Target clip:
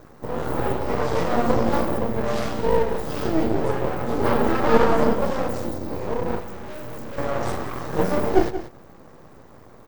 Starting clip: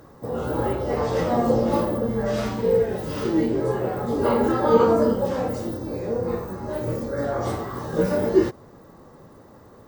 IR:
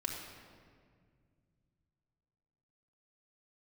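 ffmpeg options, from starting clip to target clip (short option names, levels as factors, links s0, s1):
-filter_complex "[0:a]aeval=exprs='max(val(0),0)':c=same,aecho=1:1:180:0.251,asettb=1/sr,asplit=3[s0][s1][s2];[s0]atrim=end=6.404[s3];[s1]atrim=start=6.4:end=7.18,asetpts=PTS-STARTPTS,afade=t=in:d=0.004:c=qsin,afade=t=out:st=0.776:d=0.004:c=qsin,asoftclip=type=hard:threshold=0.0237[s4];[s2]atrim=start=7.176[s5];[s3][s4]acrossfade=d=0.004:c1=hsin:c2=qsin[s6];[s6][s5]acrossfade=d=0.004:c1=qsin:c2=hsin,volume=1.58"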